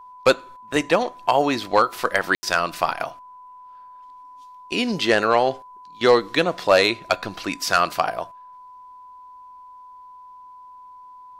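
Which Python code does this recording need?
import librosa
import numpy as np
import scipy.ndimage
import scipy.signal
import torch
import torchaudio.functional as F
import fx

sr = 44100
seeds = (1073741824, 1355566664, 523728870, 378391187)

y = fx.notch(x, sr, hz=1000.0, q=30.0)
y = fx.fix_ambience(y, sr, seeds[0], print_start_s=8.56, print_end_s=9.06, start_s=2.35, end_s=2.43)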